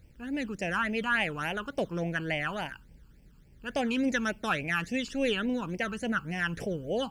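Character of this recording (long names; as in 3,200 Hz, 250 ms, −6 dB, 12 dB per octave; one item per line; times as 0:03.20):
a quantiser's noise floor 12 bits, dither none
phaser sweep stages 12, 3.5 Hz, lowest notch 620–1,300 Hz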